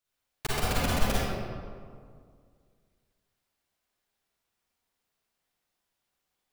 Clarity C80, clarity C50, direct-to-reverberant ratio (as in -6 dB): -2.0 dB, -5.5 dB, -8.0 dB